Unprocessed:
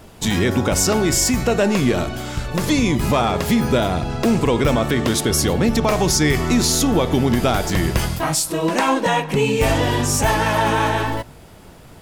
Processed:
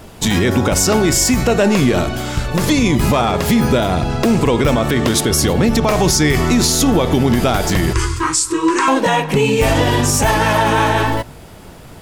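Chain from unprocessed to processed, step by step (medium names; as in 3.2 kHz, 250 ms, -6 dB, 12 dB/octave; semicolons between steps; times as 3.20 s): 7.93–8.88 s: FFT filter 110 Hz 0 dB, 190 Hz -27 dB, 350 Hz +6 dB, 680 Hz -29 dB, 1 kHz +3 dB, 3.5 kHz -6 dB, 7.9 kHz +3 dB, 15 kHz -25 dB; peak limiter -10.5 dBFS, peak gain reduction 3.5 dB; trim +5.5 dB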